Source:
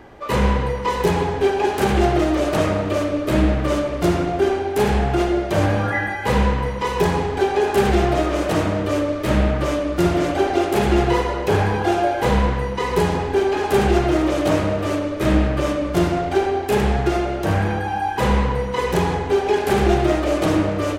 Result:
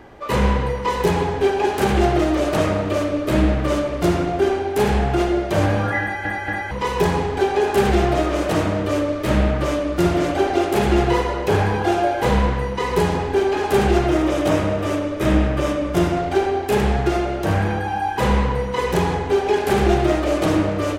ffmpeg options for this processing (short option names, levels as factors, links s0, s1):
-filter_complex "[0:a]asettb=1/sr,asplit=3[s0][s1][s2];[s0]atrim=end=14.074[s3];[s1]atrim=start=14.07:end=16.17,asetpts=PTS-STARTPTS,afade=t=in:d=0.004:c=qsin,afade=t=out:st=2.096:d=0.004:c=qsin,bandreject=f=4300:w=12[s4];[s2]atrim=start=16.166[s5];[s3][s4]acrossfade=d=0.004:c1=hsin:c2=qsin[s6];[s6][s5]acrossfade=d=0.004:c1=qsin:c2=hsin,asplit=4[s7][s8][s9][s10];[s7]atrim=end=6.252[s11];[s8]atrim=start=6.018:end=6.252[s12];[s9]atrim=start=6.018:end=6.252[s13];[s10]atrim=start=6.708[s14];[s11][s12]acrossfade=d=0.004:c1=hsin:c2=hsin[s15];[s15][s13]acrossfade=d=0.004:c1=hsin:c2=hsin[s16];[s16][s14]acrossfade=d=0.004:c1=hsin:c2=hsin"